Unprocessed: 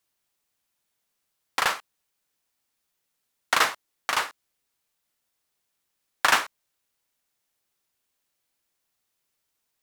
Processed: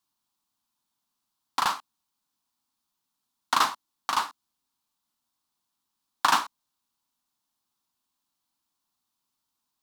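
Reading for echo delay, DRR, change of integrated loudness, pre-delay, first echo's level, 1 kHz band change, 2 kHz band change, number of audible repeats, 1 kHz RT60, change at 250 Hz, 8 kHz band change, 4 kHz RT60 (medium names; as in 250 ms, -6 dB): no echo, no reverb, -2.0 dB, no reverb, no echo, +1.5 dB, -7.0 dB, no echo, no reverb, +1.0 dB, -3.5 dB, no reverb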